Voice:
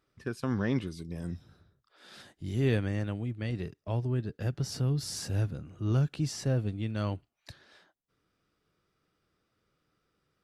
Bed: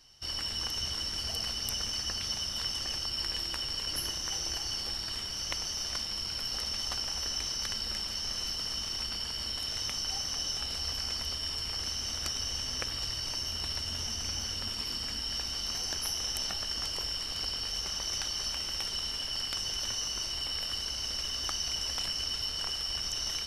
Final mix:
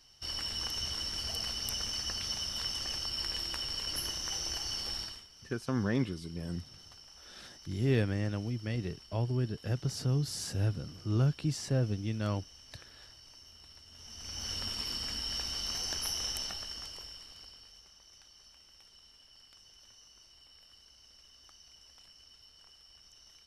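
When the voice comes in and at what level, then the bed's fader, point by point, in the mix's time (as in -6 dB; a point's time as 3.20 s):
5.25 s, -1.0 dB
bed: 5.02 s -2 dB
5.29 s -20 dB
13.89 s -20 dB
14.51 s -1.5 dB
16.26 s -1.5 dB
17.95 s -24 dB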